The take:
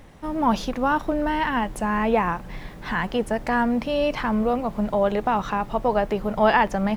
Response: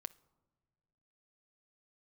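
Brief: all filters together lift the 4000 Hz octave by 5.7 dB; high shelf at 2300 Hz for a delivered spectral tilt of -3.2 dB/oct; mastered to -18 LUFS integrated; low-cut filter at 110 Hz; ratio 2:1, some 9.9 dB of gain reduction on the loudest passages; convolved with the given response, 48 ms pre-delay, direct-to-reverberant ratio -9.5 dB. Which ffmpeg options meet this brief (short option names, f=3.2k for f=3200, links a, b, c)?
-filter_complex "[0:a]highpass=110,highshelf=f=2.3k:g=3.5,equalizer=f=4k:t=o:g=5,acompressor=threshold=-31dB:ratio=2,asplit=2[a][b];[1:a]atrim=start_sample=2205,adelay=48[c];[b][c]afir=irnorm=-1:irlink=0,volume=14dB[d];[a][d]amix=inputs=2:normalize=0,volume=2dB"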